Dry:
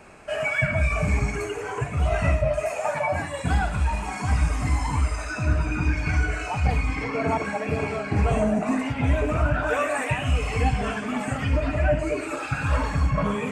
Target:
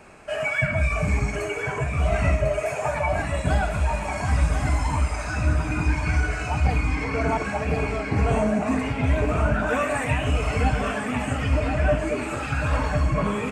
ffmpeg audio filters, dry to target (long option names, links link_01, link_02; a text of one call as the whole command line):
ffmpeg -i in.wav -af "aecho=1:1:1047|2094|3141|4188|5235:0.422|0.181|0.078|0.0335|0.0144" out.wav